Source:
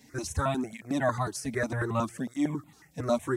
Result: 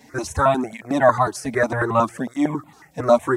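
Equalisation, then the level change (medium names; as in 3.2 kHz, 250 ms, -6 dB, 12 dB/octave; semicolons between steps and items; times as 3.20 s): peaking EQ 850 Hz +10.5 dB 2.4 oct; +3.5 dB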